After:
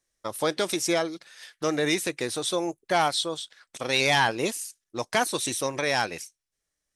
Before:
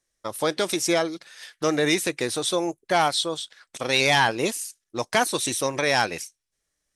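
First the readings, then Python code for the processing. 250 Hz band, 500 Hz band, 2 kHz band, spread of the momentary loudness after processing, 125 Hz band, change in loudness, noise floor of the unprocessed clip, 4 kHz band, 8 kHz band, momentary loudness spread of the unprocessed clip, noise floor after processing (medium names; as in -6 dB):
-3.0 dB, -2.5 dB, -2.5 dB, 14 LU, -2.5 dB, -2.5 dB, -80 dBFS, -2.5 dB, -2.5 dB, 14 LU, -83 dBFS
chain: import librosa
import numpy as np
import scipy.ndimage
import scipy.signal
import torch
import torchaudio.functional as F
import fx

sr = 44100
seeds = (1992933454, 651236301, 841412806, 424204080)

y = fx.rider(x, sr, range_db=3, speed_s=2.0)
y = F.gain(torch.from_numpy(y), -3.0).numpy()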